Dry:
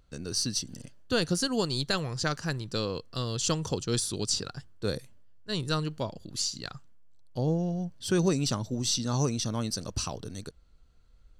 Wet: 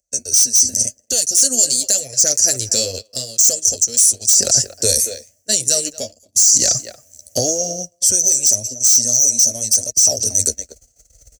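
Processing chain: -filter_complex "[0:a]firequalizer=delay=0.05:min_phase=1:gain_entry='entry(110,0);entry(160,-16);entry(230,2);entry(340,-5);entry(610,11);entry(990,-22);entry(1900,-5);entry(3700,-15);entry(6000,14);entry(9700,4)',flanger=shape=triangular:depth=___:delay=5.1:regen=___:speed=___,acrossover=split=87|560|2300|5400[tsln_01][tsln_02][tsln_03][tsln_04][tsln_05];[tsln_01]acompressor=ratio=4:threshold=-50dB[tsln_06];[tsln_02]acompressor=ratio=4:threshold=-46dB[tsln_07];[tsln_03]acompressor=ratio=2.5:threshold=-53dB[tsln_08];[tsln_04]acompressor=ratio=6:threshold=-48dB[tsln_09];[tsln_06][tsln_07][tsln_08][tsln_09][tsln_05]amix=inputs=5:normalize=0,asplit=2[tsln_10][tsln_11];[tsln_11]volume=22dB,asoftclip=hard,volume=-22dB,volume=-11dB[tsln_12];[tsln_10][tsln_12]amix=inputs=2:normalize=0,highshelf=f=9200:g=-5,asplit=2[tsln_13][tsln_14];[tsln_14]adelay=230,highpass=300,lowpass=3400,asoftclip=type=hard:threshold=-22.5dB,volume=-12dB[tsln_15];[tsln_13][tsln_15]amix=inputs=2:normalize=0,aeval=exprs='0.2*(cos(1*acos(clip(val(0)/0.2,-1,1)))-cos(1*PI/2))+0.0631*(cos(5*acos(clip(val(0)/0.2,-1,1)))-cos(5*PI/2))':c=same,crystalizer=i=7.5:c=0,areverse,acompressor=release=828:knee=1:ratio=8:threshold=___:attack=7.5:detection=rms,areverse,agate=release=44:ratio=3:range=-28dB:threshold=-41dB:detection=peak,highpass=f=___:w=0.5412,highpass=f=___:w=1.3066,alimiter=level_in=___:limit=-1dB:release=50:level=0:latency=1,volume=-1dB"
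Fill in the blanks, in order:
8.4, 13, 0.9, -16dB, 42, 42, 13.5dB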